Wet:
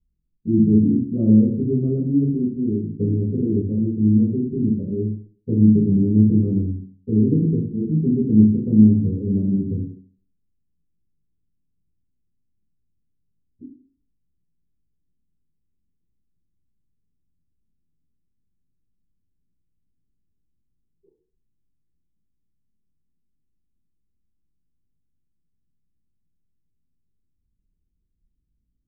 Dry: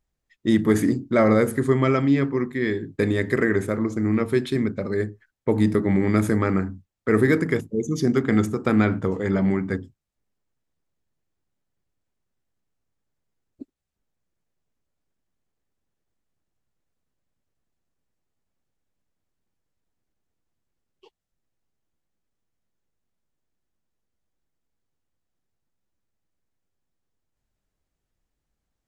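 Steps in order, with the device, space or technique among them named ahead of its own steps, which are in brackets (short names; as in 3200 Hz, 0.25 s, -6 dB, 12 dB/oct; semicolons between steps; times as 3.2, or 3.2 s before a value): next room (LPF 280 Hz 24 dB/oct; reverb RT60 0.50 s, pre-delay 3 ms, DRR -11.5 dB); gain -5.5 dB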